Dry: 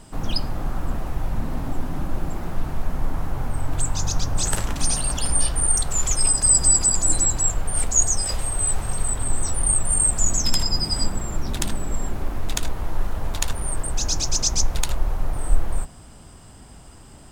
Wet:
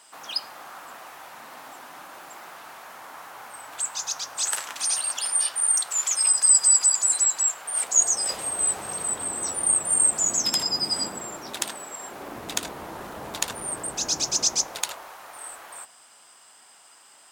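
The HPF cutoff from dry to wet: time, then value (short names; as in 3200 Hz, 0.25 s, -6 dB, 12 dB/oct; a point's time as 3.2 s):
7.6 s 1000 Hz
8.39 s 300 Hz
11.05 s 300 Hz
12 s 720 Hz
12.37 s 240 Hz
14.37 s 240 Hz
15.14 s 1000 Hz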